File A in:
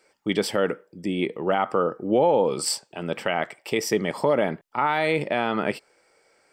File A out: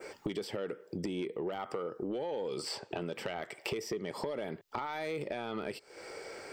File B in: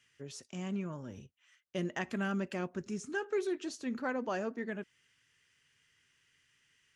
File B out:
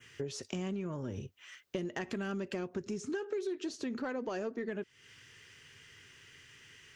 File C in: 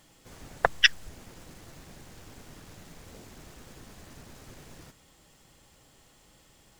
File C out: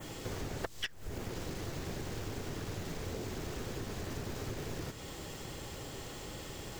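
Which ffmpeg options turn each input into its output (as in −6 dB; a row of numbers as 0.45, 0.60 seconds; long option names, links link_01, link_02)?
-filter_complex "[0:a]acrossover=split=2900|7200[link_01][link_02][link_03];[link_01]acompressor=threshold=-36dB:ratio=4[link_04];[link_02]acompressor=threshold=-51dB:ratio=4[link_05];[link_03]acompressor=threshold=-54dB:ratio=4[link_06];[link_04][link_05][link_06]amix=inputs=3:normalize=0,adynamicequalizer=threshold=0.00158:dfrequency=4400:dqfactor=1.2:tfrequency=4400:tqfactor=1.2:attack=5:release=100:ratio=0.375:range=1.5:mode=boostabove:tftype=bell,asoftclip=type=tanh:threshold=-28.5dB,equalizer=frequency=100:width_type=o:width=0.67:gain=6,equalizer=frequency=400:width_type=o:width=0.67:gain=7,equalizer=frequency=10000:width_type=o:width=0.67:gain=-6,acompressor=threshold=-52dB:ratio=4,volume=14.5dB"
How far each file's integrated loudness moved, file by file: −14.0, −1.0, −17.5 LU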